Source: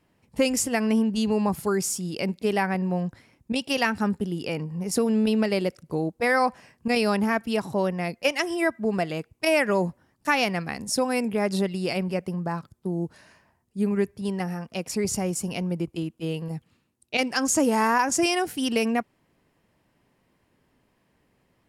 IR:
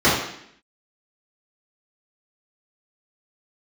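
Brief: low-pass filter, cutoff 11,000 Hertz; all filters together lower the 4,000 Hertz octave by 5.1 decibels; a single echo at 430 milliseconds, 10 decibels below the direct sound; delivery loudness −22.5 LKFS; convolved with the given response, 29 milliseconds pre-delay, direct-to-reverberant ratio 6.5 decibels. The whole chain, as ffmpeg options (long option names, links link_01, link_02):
-filter_complex "[0:a]lowpass=11000,equalizer=frequency=4000:width_type=o:gain=-8,aecho=1:1:430:0.316,asplit=2[link_01][link_02];[1:a]atrim=start_sample=2205,adelay=29[link_03];[link_02][link_03]afir=irnorm=-1:irlink=0,volume=-29.5dB[link_04];[link_01][link_04]amix=inputs=2:normalize=0,volume=2dB"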